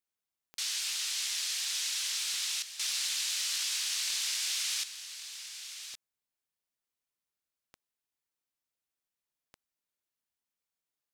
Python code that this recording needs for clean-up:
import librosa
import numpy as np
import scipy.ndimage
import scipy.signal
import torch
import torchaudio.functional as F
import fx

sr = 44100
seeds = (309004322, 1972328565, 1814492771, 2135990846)

y = fx.fix_declip(x, sr, threshold_db=-23.5)
y = fx.fix_declick_ar(y, sr, threshold=10.0)
y = fx.fix_echo_inverse(y, sr, delay_ms=1118, level_db=-11.0)